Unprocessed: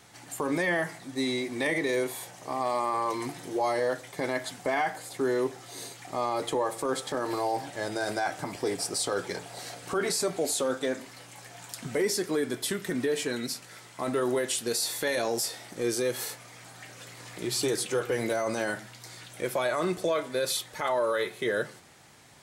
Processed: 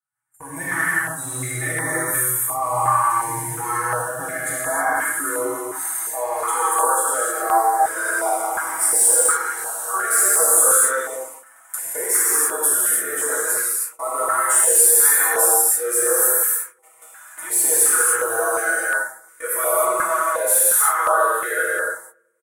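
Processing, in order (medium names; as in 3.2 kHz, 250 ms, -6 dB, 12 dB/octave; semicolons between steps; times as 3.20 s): comb 6.2 ms, depth 94%; saturation -18 dBFS, distortion -19 dB; level rider gain up to 12 dB; high-pass sweep 130 Hz -> 470 Hz, 3.57–6.18 s; gate -27 dBFS, range -36 dB; FFT filter 100 Hz 0 dB, 170 Hz -19 dB, 490 Hz -14 dB, 1.4 kHz +11 dB, 2.6 kHz -9 dB, 4.5 kHz -20 dB, 9.1 kHz +11 dB; on a send: filtered feedback delay 95 ms, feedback 63%, low-pass 1.2 kHz, level -22 dB; on the sum: gated-style reverb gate 340 ms flat, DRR -7.5 dB; dynamic bell 2.2 kHz, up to -4 dB, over -22 dBFS, Q 0.71; step-sequenced notch 2.8 Hz 460–2700 Hz; trim -9 dB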